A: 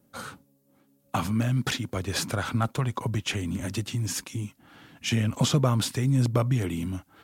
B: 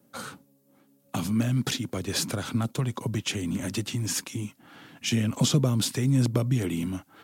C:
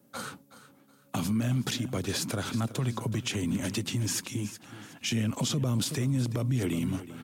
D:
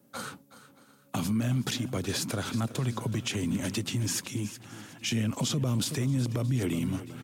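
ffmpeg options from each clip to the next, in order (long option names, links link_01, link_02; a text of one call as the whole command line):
ffmpeg -i in.wav -filter_complex "[0:a]highpass=130,acrossover=split=460|3000[link_01][link_02][link_03];[link_02]acompressor=threshold=-40dB:ratio=6[link_04];[link_01][link_04][link_03]amix=inputs=3:normalize=0,volume=2.5dB" out.wav
ffmpeg -i in.wav -af "aecho=1:1:371|742|1113:0.168|0.0504|0.0151,alimiter=limit=-20.5dB:level=0:latency=1:release=57" out.wav
ffmpeg -i in.wav -af "aecho=1:1:623|1246|1869:0.0708|0.0368|0.0191" out.wav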